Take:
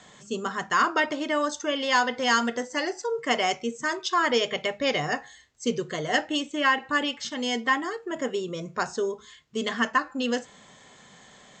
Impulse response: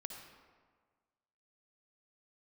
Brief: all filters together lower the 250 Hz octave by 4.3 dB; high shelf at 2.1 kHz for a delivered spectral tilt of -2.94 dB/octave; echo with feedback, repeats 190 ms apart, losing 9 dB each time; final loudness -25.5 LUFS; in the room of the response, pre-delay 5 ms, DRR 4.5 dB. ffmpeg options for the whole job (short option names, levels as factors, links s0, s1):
-filter_complex "[0:a]equalizer=f=250:t=o:g=-5,highshelf=f=2100:g=-3.5,aecho=1:1:190|380|570|760:0.355|0.124|0.0435|0.0152,asplit=2[s0][s1];[1:a]atrim=start_sample=2205,adelay=5[s2];[s1][s2]afir=irnorm=-1:irlink=0,volume=0.841[s3];[s0][s3]amix=inputs=2:normalize=0,volume=1.12"